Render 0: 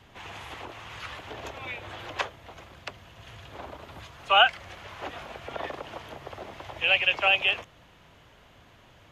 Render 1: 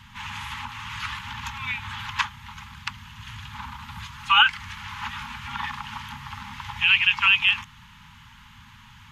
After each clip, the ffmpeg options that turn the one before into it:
-filter_complex "[0:a]afftfilt=real='re*(1-between(b*sr/4096,250,810))':imag='im*(1-between(b*sr/4096,250,810))':win_size=4096:overlap=0.75,asplit=2[a][b];[b]alimiter=limit=-18.5dB:level=0:latency=1:release=196,volume=3dB[c];[a][c]amix=inputs=2:normalize=0"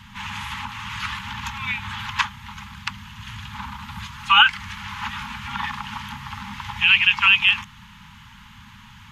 -af "equalizer=f=200:w=6.9:g=8,volume=3dB"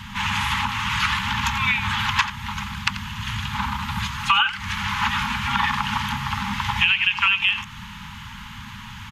-af "acompressor=threshold=-24dB:ratio=8,aecho=1:1:87:0.211,volume=8dB"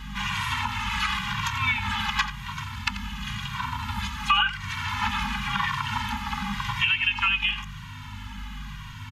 -filter_complex "[0:a]aeval=exprs='val(0)+0.02*(sin(2*PI*50*n/s)+sin(2*PI*2*50*n/s)/2+sin(2*PI*3*50*n/s)/3+sin(2*PI*4*50*n/s)/4+sin(2*PI*5*50*n/s)/5)':c=same,asplit=2[a][b];[b]adelay=2,afreqshift=-0.94[c];[a][c]amix=inputs=2:normalize=1,volume=-1.5dB"

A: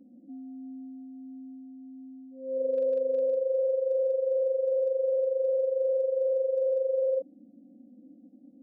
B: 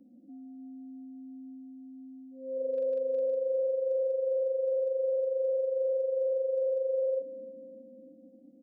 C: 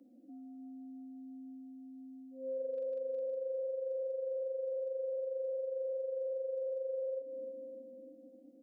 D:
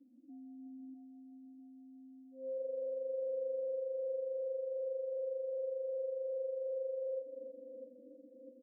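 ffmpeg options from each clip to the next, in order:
-filter_complex "[0:a]acrossover=split=360[a][b];[a]alimiter=level_in=18.5dB:limit=-24dB:level=0:latency=1,volume=-18.5dB[c];[c][b]amix=inputs=2:normalize=0,aecho=1:1:301|602|903|1204|1505:0.141|0.0763|0.0412|0.0222|0.012,volume=-3dB"
-af "highpass=f=280:w=0.5412,highpass=f=280:w=1.3066,acompressor=threshold=-37dB:ratio=6,volume=1dB"
-af "afftdn=nr=14:nf=-50,aecho=1:1:650|1300|1950|2600|3250:0.473|0.218|0.1|0.0461|0.0212,volume=-1.5dB"

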